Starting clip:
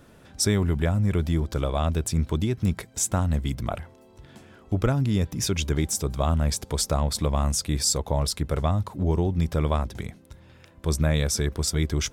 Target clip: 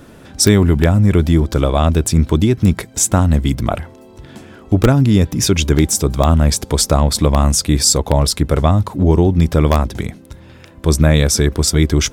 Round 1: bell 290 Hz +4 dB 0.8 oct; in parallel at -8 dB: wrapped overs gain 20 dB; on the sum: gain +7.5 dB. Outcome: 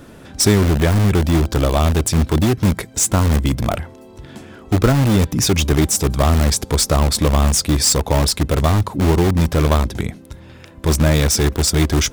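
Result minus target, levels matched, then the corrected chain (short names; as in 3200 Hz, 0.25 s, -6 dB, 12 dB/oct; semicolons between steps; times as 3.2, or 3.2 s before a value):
wrapped overs: distortion +35 dB
bell 290 Hz +4 dB 0.8 oct; in parallel at -8 dB: wrapped overs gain 11.5 dB; on the sum: gain +7.5 dB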